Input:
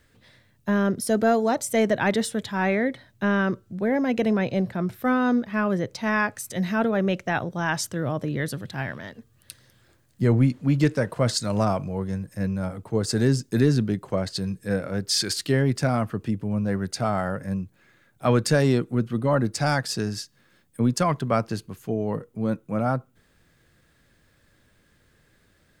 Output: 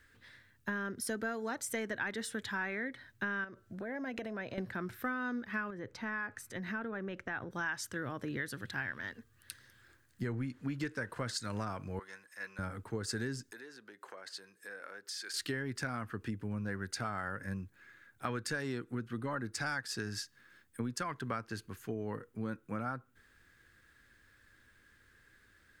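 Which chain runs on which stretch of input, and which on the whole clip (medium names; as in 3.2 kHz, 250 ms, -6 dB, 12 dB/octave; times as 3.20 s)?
3.44–4.58 s: peaking EQ 640 Hz +14 dB 0.3 oct + compression, threshold -29 dBFS
5.70–7.51 s: treble shelf 2.7 kHz -12 dB + compression 4:1, threshold -27 dBFS
11.99–12.59 s: high-pass 860 Hz + treble shelf 8.1 kHz -7 dB + band-stop 1.6 kHz, Q 15
13.51–15.34 s: compression 4:1, threshold -36 dBFS + Chebyshev high-pass 560 Hz
whole clip: fifteen-band graphic EQ 160 Hz -9 dB, 630 Hz -8 dB, 1.6 kHz +9 dB; compression, threshold -29 dBFS; trim -5 dB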